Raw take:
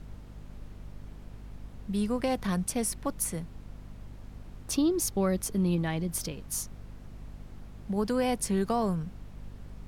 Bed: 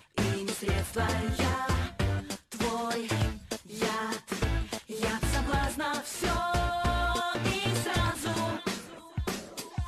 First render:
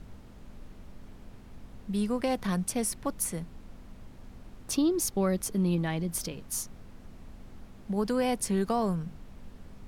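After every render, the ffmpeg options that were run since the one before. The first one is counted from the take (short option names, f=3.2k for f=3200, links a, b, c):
-af "bandreject=f=50:t=h:w=4,bandreject=f=100:t=h:w=4,bandreject=f=150:t=h:w=4"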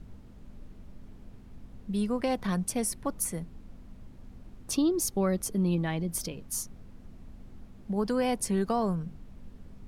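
-af "afftdn=nr=6:nf=-50"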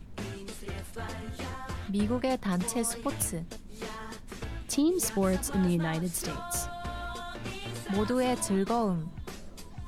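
-filter_complex "[1:a]volume=-9.5dB[a];[0:a][a]amix=inputs=2:normalize=0"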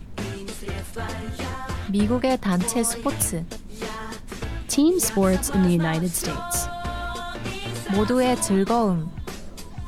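-af "volume=7.5dB"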